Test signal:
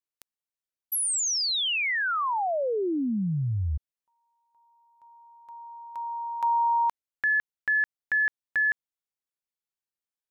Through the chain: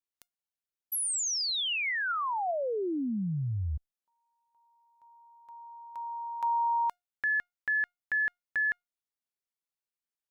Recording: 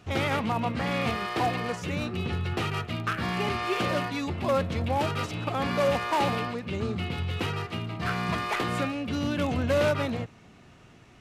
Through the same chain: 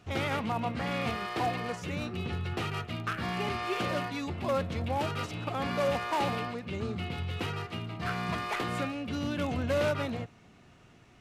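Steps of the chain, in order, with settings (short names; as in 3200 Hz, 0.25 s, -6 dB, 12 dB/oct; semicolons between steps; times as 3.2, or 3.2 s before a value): resonator 710 Hz, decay 0.2 s, harmonics all, mix 40%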